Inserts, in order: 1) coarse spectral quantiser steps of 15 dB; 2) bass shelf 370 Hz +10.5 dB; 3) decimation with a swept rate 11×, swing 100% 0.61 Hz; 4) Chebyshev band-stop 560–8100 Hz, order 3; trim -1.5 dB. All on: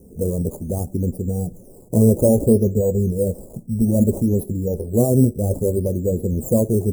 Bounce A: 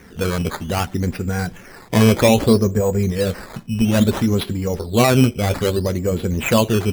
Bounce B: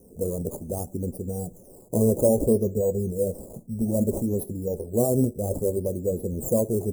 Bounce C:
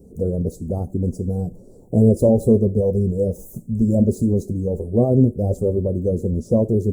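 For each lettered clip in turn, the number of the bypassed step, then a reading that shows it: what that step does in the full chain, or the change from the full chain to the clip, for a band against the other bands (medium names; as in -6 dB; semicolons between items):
4, 1 kHz band +13.5 dB; 2, 125 Hz band -6.0 dB; 3, distortion -7 dB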